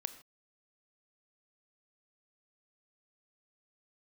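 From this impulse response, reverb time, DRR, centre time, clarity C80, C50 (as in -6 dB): not exponential, 11.5 dB, 6 ms, 15.5 dB, 13.5 dB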